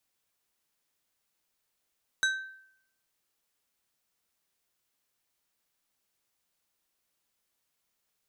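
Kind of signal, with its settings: glass hit plate, lowest mode 1.55 kHz, decay 0.70 s, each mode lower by 5 dB, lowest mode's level -22 dB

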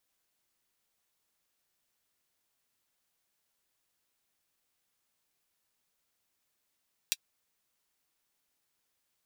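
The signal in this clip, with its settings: closed hi-hat, high-pass 3.1 kHz, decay 0.05 s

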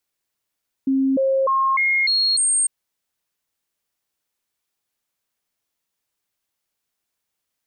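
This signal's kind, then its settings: stepped sine 268 Hz up, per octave 1, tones 6, 0.30 s, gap 0.00 s -15.5 dBFS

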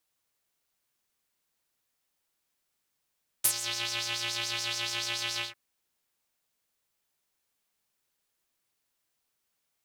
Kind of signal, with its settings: synth patch with filter wobble A#2, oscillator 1 square, oscillator 2 saw, oscillator 2 level -15 dB, noise -14 dB, filter bandpass, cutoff 2.3 kHz, Q 3, filter envelope 2 oct, attack 12 ms, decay 0.07 s, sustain -16 dB, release 0.14 s, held 1.96 s, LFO 7 Hz, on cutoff 0.5 oct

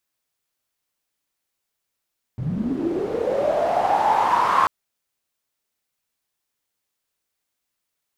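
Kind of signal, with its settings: swept filtered noise pink, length 2.29 s bandpass, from 120 Hz, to 1.1 kHz, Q 9.4, linear, gain ramp +8.5 dB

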